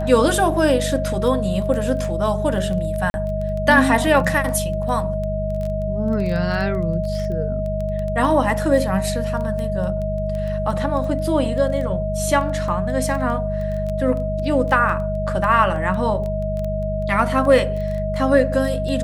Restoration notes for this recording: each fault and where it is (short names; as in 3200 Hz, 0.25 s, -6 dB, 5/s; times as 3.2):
crackle 11/s -24 dBFS
hum 50 Hz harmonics 4 -25 dBFS
tone 630 Hz -24 dBFS
3.1–3.14 gap 41 ms